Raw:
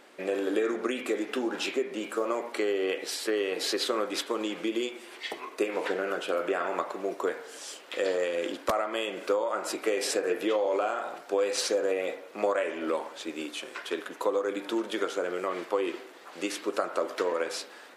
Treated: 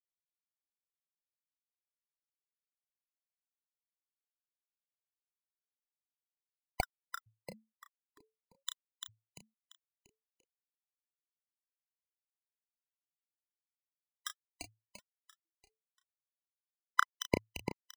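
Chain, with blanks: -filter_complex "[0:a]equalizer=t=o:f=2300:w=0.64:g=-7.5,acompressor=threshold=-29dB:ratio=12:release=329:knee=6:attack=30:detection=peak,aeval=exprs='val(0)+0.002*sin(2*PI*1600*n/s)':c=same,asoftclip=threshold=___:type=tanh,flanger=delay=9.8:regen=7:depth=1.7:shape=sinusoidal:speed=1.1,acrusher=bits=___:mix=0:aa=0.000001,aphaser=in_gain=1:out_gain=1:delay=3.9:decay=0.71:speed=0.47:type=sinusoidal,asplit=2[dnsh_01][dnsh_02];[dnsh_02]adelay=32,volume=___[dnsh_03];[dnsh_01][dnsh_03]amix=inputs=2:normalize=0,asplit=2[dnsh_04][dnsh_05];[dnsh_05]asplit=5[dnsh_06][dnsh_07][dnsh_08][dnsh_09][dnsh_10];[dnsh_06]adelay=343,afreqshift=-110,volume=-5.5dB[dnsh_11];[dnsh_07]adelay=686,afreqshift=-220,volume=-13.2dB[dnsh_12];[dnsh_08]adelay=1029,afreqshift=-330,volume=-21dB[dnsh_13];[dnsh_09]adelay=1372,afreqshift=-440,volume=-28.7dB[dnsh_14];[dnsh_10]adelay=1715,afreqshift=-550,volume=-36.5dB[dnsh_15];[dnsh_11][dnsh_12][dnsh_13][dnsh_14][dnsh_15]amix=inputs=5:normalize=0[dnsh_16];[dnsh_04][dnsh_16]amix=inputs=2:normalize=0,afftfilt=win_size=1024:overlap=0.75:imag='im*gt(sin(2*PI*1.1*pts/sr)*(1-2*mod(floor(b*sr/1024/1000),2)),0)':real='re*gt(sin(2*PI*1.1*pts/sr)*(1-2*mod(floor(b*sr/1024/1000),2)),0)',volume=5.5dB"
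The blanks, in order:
-17dB, 3, -8dB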